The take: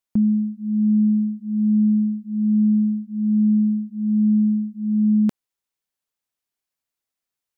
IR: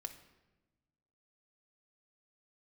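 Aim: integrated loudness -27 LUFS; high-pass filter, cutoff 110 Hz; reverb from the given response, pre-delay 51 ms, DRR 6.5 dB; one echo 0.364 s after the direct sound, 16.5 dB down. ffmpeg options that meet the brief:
-filter_complex "[0:a]highpass=110,aecho=1:1:364:0.15,asplit=2[a][b];[1:a]atrim=start_sample=2205,adelay=51[c];[b][c]afir=irnorm=-1:irlink=0,volume=-3.5dB[d];[a][d]amix=inputs=2:normalize=0,volume=-7dB"

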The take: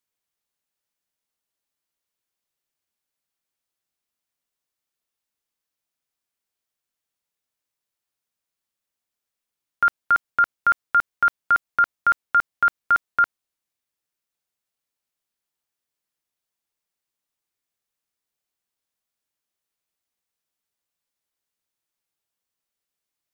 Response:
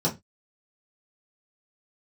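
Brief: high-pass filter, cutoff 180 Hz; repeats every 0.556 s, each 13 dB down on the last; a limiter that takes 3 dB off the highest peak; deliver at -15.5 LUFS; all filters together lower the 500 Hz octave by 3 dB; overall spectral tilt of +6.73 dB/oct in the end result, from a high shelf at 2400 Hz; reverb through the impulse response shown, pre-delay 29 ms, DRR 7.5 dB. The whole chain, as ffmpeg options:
-filter_complex "[0:a]highpass=180,equalizer=f=500:t=o:g=-4,highshelf=f=2.4k:g=3.5,alimiter=limit=-14dB:level=0:latency=1,aecho=1:1:556|1112|1668:0.224|0.0493|0.0108,asplit=2[a][b];[1:a]atrim=start_sample=2205,adelay=29[c];[b][c]afir=irnorm=-1:irlink=0,volume=-18dB[d];[a][d]amix=inputs=2:normalize=0,volume=8dB"

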